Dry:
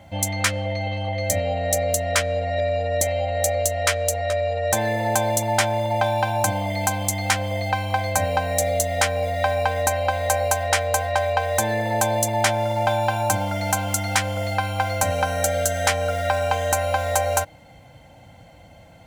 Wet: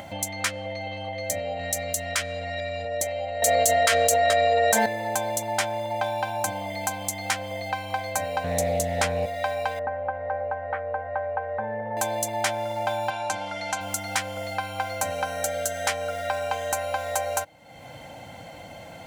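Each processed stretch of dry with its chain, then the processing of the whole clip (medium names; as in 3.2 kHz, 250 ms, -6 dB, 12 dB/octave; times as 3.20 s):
1.59–2.85 s: high-pass 48 Hz + peaking EQ 530 Hz -9.5 dB 1.5 oct + level flattener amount 50%
3.42–4.86 s: comb 4.4 ms, depth 94% + level flattener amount 100%
8.44–9.26 s: peaking EQ 140 Hz +14.5 dB 2.5 oct + loudspeaker Doppler distortion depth 0.14 ms
9.79–11.97 s: low-pass 1.6 kHz 24 dB/octave + comb of notches 340 Hz
13.10–13.81 s: low-pass 4.7 kHz + tilt EQ +2 dB/octave
whole clip: high-pass 250 Hz 6 dB/octave; upward compressor, threshold -24 dBFS; trim -5 dB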